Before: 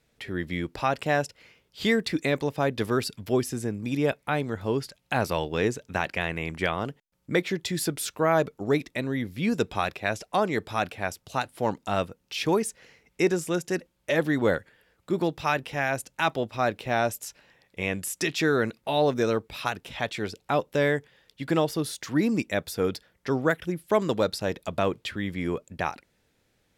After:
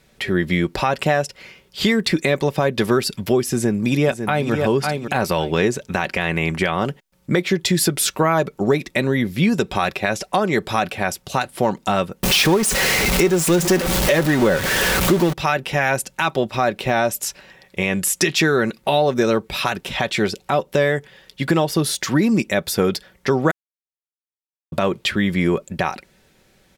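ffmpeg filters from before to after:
ffmpeg -i in.wav -filter_complex "[0:a]asplit=2[link_01][link_02];[link_02]afade=type=in:start_time=3.51:duration=0.01,afade=type=out:start_time=4.52:duration=0.01,aecho=0:1:550|1100|1650:0.375837|0.0751675|0.0150335[link_03];[link_01][link_03]amix=inputs=2:normalize=0,asettb=1/sr,asplit=3[link_04][link_05][link_06];[link_04]atrim=end=12.234[link_07];[link_05]atrim=start=12.23:end=15.33,asetpts=PTS-STARTPTS,afade=type=in:duration=0.004:curve=qsin,afade=type=out:start_time=3.096:duration=0.004:curve=qsin,aeval=exprs='val(0)+0.5*0.0562*sgn(val(0))':channel_layout=same[link_08];[link_06]atrim=start=15.326[link_09];[link_07][link_08]acrossfade=duration=0.004:curve1=hsin:curve2=qsin[link_10];[link_10][link_09]acrossfade=duration=0.004:curve1=qsin:curve2=hsin,asplit=3[link_11][link_12][link_13];[link_11]atrim=end=23.51,asetpts=PTS-STARTPTS,afade=type=out:start_time=23.506:duration=0.004:curve=hsin[link_14];[link_12]atrim=start=23.51:end=24.72,asetpts=PTS-STARTPTS,volume=0[link_15];[link_13]atrim=start=24.72,asetpts=PTS-STARTPTS,afade=type=in:duration=0.004:curve=hsin[link_16];[link_14][link_15][link_16]concat=n=3:v=0:a=1,aecho=1:1:5.3:0.39,acompressor=threshold=-26dB:ratio=6,alimiter=level_in=17.5dB:limit=-1dB:release=50:level=0:latency=1,volume=-5dB" out.wav

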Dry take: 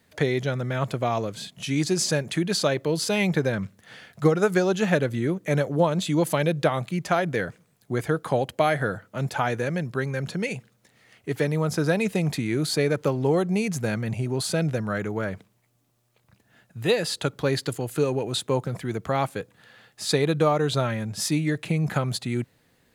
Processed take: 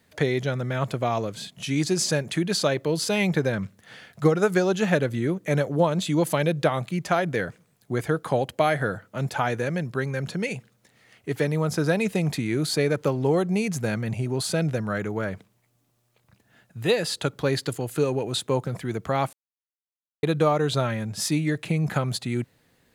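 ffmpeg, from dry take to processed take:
ffmpeg -i in.wav -filter_complex "[0:a]asplit=3[link_01][link_02][link_03];[link_01]atrim=end=19.33,asetpts=PTS-STARTPTS,afade=type=out:start_time=19.326:duration=0.004:curve=hsin[link_04];[link_02]atrim=start=19.33:end=20.23,asetpts=PTS-STARTPTS,volume=0[link_05];[link_03]atrim=start=20.23,asetpts=PTS-STARTPTS,afade=type=in:duration=0.004:curve=hsin[link_06];[link_04][link_05][link_06]concat=n=3:v=0:a=1" out.wav

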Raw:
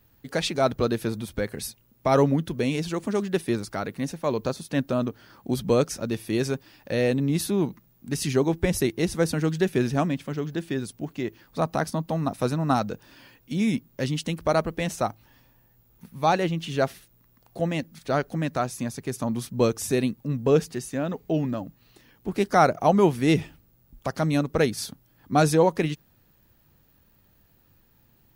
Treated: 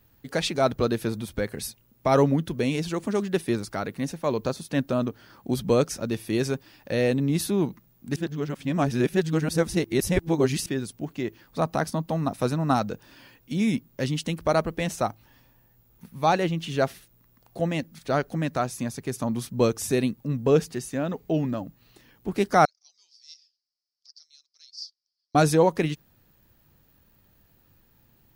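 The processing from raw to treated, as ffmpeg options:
ffmpeg -i in.wav -filter_complex "[0:a]asettb=1/sr,asplit=3[link_01][link_02][link_03];[link_01]atrim=end=22.654[link_04];[link_02]atrim=start=22.65:end=25.35,asetpts=PTS-STARTPTS,afade=type=in:duration=0.004:curve=qsin,afade=type=out:start_time=2.696:duration=0.004:curve=qsin,asuperpass=centerf=5000:order=4:qfactor=5[link_05];[link_03]atrim=start=25.346[link_06];[link_04][link_05]acrossfade=duration=0.004:curve1=hsin:curve2=qsin[link_07];[link_07][link_06]acrossfade=duration=0.004:curve1=qsin:curve2=hsin,asplit=3[link_08][link_09][link_10];[link_08]atrim=end=8.162[link_11];[link_09]atrim=start=8.158:end=10.662,asetpts=PTS-STARTPTS,areverse[link_12];[link_10]atrim=start=10.658[link_13];[link_11][link_12]acrossfade=duration=0.004:curve1=hsin:curve2=hsin[link_14];[link_14][link_13]acrossfade=duration=0.004:curve1=hsin:curve2=hsin" out.wav

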